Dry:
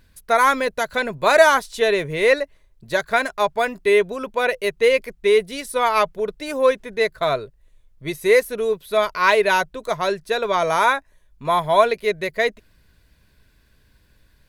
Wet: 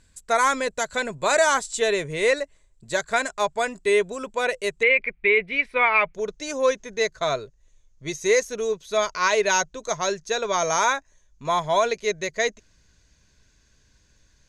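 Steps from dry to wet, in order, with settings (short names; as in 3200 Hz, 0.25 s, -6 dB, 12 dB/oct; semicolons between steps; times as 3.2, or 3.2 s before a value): synth low-pass 7600 Hz, resonance Q 8.6, from 4.83 s 2300 Hz, from 6.14 s 6500 Hz; maximiser +4.5 dB; gain -8.5 dB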